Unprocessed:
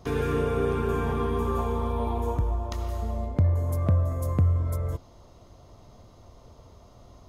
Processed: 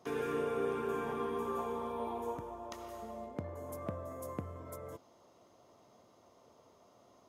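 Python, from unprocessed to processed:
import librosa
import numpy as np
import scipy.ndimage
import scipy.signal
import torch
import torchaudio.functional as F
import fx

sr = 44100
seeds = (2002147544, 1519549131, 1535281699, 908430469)

y = scipy.signal.sosfilt(scipy.signal.butter(2, 260.0, 'highpass', fs=sr, output='sos'), x)
y = fx.peak_eq(y, sr, hz=4200.0, db=-4.5, octaves=0.48)
y = y * librosa.db_to_amplitude(-7.0)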